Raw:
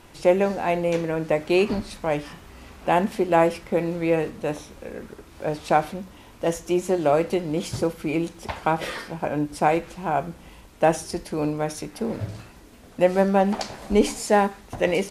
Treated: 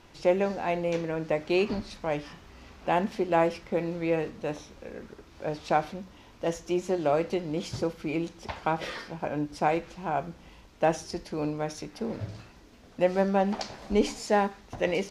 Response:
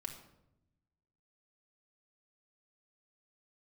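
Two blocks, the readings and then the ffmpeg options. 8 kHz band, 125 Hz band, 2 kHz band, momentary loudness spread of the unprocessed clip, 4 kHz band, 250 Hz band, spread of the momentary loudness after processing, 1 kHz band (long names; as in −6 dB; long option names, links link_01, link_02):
−8.0 dB, −5.5 dB, −5.0 dB, 14 LU, −4.0 dB, −5.5 dB, 14 LU, −5.5 dB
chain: -af "highshelf=frequency=7300:width_type=q:width=1.5:gain=-7.5,volume=-5.5dB"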